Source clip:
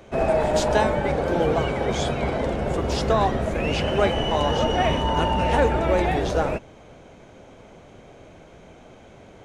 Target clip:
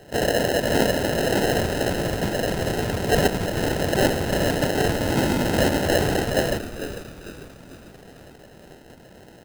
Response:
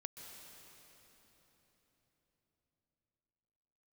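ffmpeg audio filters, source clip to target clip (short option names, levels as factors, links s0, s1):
-filter_complex "[0:a]afftfilt=real='hypot(re,im)*cos(2*PI*random(0))':imag='hypot(re,im)*sin(2*PI*random(1))':win_size=512:overlap=0.75,highpass=61,acrossover=split=3300[s0][s1];[s1]acompressor=threshold=0.00224:ratio=4:attack=1:release=60[s2];[s0][s2]amix=inputs=2:normalize=0,acrusher=samples=38:mix=1:aa=0.000001,asplit=2[s3][s4];[s4]asplit=5[s5][s6][s7][s8][s9];[s5]adelay=448,afreqshift=-90,volume=0.282[s10];[s6]adelay=896,afreqshift=-180,volume=0.13[s11];[s7]adelay=1344,afreqshift=-270,volume=0.0596[s12];[s8]adelay=1792,afreqshift=-360,volume=0.0275[s13];[s9]adelay=2240,afreqshift=-450,volume=0.0126[s14];[s10][s11][s12][s13][s14]amix=inputs=5:normalize=0[s15];[s3][s15]amix=inputs=2:normalize=0,volume=2"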